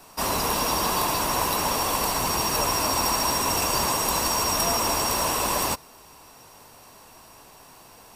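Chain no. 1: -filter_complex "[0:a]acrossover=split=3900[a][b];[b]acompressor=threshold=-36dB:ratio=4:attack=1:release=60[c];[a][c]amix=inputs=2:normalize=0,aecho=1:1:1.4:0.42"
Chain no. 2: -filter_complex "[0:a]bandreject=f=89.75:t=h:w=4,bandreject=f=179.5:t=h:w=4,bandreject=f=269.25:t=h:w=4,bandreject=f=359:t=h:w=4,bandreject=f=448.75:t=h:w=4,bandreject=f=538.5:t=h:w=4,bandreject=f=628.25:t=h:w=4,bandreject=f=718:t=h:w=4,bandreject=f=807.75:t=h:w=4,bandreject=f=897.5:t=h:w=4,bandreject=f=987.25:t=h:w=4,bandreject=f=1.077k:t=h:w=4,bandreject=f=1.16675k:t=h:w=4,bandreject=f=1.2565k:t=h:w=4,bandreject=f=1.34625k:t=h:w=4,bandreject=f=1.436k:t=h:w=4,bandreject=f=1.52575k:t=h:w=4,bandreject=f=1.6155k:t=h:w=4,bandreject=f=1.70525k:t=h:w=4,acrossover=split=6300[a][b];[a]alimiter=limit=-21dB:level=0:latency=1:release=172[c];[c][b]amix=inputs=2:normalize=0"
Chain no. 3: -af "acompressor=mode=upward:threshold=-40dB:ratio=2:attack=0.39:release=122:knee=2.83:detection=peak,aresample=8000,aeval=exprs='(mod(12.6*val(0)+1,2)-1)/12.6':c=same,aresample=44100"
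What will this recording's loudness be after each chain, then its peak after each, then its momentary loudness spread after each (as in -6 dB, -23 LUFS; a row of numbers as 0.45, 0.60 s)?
-26.0, -25.5, -27.0 LUFS; -13.0, -10.0, -17.5 dBFS; 1, 2, 1 LU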